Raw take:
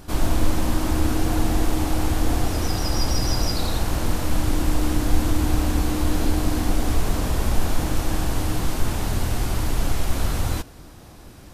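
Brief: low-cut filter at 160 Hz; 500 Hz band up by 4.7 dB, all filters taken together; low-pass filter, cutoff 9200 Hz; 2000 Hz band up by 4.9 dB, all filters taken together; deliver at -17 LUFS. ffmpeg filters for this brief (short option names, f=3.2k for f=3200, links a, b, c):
-af "highpass=160,lowpass=9.2k,equalizer=f=500:t=o:g=6,equalizer=f=2k:t=o:g=6,volume=8.5dB"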